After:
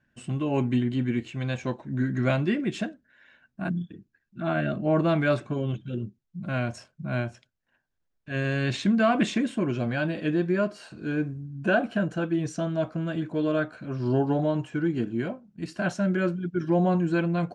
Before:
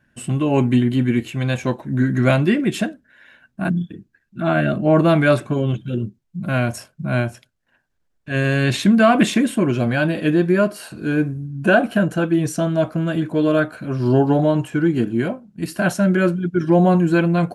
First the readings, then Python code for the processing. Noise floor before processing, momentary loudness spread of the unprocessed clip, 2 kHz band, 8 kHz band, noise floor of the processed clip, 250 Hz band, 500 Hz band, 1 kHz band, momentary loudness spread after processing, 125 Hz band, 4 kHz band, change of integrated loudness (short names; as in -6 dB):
-68 dBFS, 10 LU, -8.5 dB, -12.0 dB, -77 dBFS, -8.5 dB, -8.5 dB, -8.5 dB, 10 LU, -8.5 dB, -8.5 dB, -8.5 dB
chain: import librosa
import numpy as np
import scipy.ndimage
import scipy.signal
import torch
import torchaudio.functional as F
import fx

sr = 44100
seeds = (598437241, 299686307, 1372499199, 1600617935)

y = scipy.signal.sosfilt(scipy.signal.butter(4, 7300.0, 'lowpass', fs=sr, output='sos'), x)
y = y * 10.0 ** (-8.5 / 20.0)